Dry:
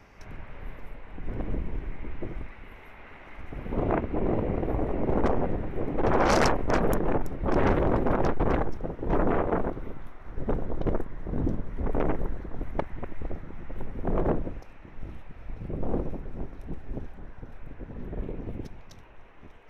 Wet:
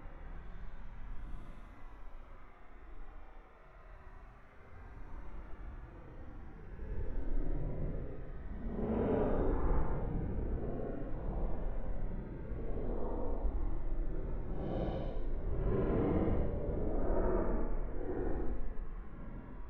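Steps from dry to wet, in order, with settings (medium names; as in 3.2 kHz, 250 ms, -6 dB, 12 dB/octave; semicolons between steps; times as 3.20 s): low-pass that closes with the level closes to 2.3 kHz, closed at -19.5 dBFS; Paulstretch 18×, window 0.05 s, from 9.99 s; trim -8 dB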